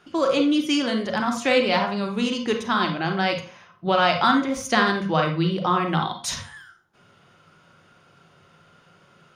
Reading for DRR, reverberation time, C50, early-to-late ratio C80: 3.0 dB, 0.45 s, 7.0 dB, 13.0 dB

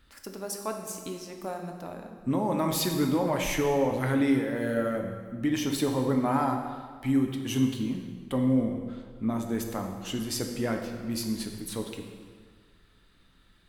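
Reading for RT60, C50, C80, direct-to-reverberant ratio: 1.7 s, 5.0 dB, 7.0 dB, 3.0 dB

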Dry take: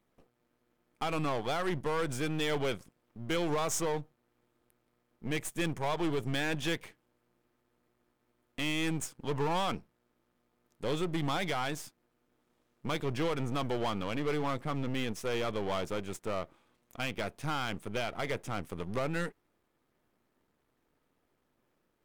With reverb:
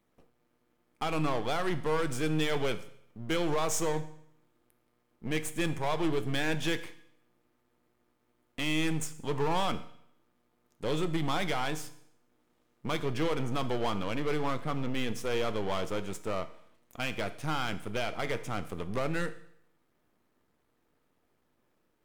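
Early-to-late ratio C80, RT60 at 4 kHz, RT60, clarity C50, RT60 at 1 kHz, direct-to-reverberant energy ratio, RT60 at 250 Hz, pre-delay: 17.0 dB, 0.70 s, 0.70 s, 14.5 dB, 0.70 s, 10.5 dB, 0.70 s, 7 ms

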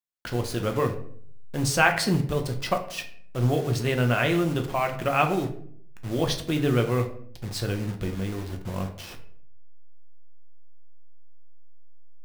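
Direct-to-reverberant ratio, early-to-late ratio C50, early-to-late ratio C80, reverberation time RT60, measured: 4.0 dB, 10.5 dB, 14.0 dB, 0.60 s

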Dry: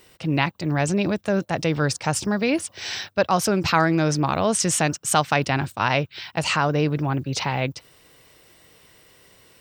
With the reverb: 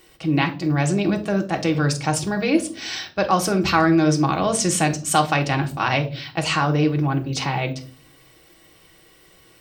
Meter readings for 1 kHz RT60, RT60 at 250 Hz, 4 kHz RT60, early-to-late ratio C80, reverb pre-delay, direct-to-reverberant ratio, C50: 0.35 s, 0.80 s, 0.30 s, 19.5 dB, 3 ms, 3.0 dB, 14.0 dB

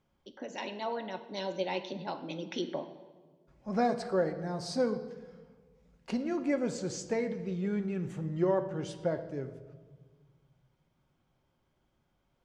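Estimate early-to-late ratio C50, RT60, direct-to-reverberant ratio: 11.0 dB, 1.5 s, 6.0 dB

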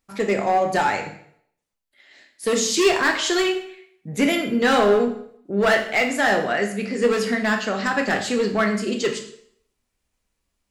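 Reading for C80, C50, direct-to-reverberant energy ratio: 12.0 dB, 8.5 dB, 3.0 dB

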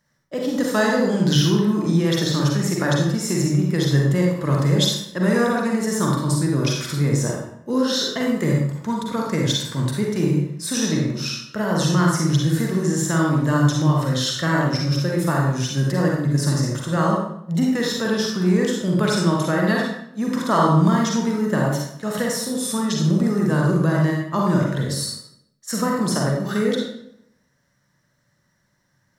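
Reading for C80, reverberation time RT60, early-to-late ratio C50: 4.0 dB, 0.75 s, 0.5 dB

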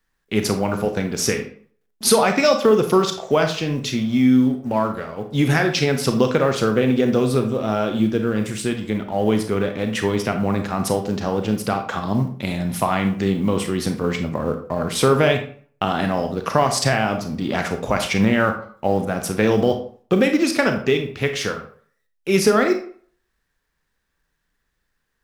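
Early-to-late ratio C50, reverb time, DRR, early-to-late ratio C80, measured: 8.5 dB, 0.50 s, 5.5 dB, 13.0 dB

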